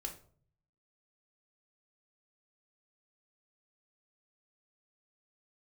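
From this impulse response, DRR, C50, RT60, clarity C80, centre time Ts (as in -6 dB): 3.0 dB, 10.5 dB, 0.50 s, 15.5 dB, 16 ms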